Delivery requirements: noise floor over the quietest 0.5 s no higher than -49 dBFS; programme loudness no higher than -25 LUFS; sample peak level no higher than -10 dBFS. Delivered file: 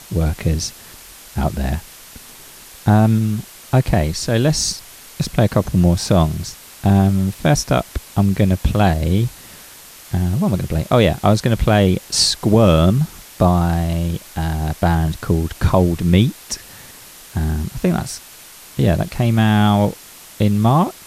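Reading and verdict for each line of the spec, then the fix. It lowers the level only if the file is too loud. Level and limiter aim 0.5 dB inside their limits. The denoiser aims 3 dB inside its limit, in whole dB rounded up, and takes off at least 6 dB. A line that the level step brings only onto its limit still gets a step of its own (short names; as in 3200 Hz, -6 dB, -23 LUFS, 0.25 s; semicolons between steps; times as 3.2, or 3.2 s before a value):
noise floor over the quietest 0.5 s -41 dBFS: fail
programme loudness -17.5 LUFS: fail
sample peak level -2.0 dBFS: fail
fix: denoiser 6 dB, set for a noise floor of -41 dBFS; gain -8 dB; limiter -10.5 dBFS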